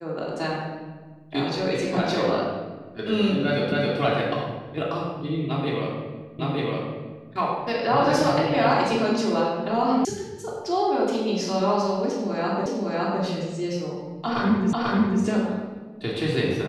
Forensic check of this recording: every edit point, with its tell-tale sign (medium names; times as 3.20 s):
3.72 s: repeat of the last 0.27 s
6.39 s: repeat of the last 0.91 s
10.05 s: sound stops dead
12.66 s: repeat of the last 0.56 s
14.73 s: repeat of the last 0.49 s